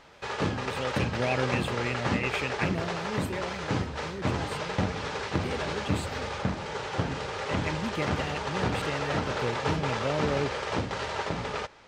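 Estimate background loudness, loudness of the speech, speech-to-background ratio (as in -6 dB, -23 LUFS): -31.5 LUFS, -34.5 LUFS, -3.0 dB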